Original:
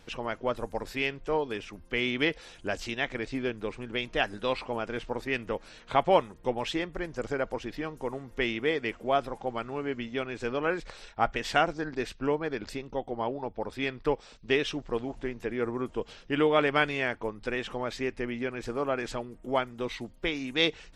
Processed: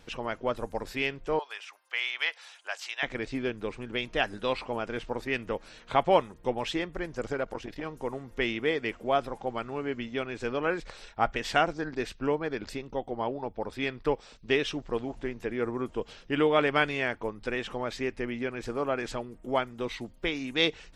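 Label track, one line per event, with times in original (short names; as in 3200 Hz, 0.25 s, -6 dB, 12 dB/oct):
1.390000	3.030000	HPF 780 Hz 24 dB/oct
7.330000	7.900000	core saturation saturates under 600 Hz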